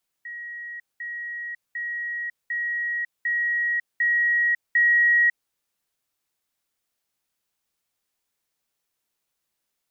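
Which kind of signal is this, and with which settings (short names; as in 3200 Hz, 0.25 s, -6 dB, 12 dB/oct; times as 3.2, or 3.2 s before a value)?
level ladder 1900 Hz -33 dBFS, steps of 3 dB, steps 7, 0.55 s 0.20 s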